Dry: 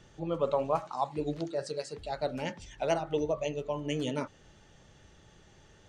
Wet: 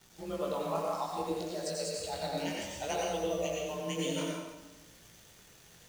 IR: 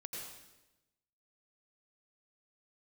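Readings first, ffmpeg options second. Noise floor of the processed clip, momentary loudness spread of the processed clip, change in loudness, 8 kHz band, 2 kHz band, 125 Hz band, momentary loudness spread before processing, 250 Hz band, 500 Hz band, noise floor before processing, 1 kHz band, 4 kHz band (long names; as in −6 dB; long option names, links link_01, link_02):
−58 dBFS, 18 LU, −2.0 dB, +8.5 dB, +0.5 dB, −3.5 dB, 8 LU, −2.0 dB, −2.5 dB, −59 dBFS, −2.0 dB, +3.5 dB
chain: -filter_complex "[0:a]bandreject=frequency=107.1:width_type=h:width=4,bandreject=frequency=214.2:width_type=h:width=4,bandreject=frequency=321.3:width_type=h:width=4,bandreject=frequency=428.4:width_type=h:width=4,bandreject=frequency=535.5:width_type=h:width=4,asplit=2[link_01][link_02];[link_02]acompressor=threshold=-42dB:ratio=6,volume=3dB[link_03];[link_01][link_03]amix=inputs=2:normalize=0,crystalizer=i=3:c=0,afreqshift=26,acrusher=bits=8:dc=4:mix=0:aa=0.000001,aeval=exprs='sgn(val(0))*max(abs(val(0))-0.00316,0)':channel_layout=same,flanger=delay=17.5:depth=7:speed=0.62[link_04];[1:a]atrim=start_sample=2205[link_05];[link_04][link_05]afir=irnorm=-1:irlink=0"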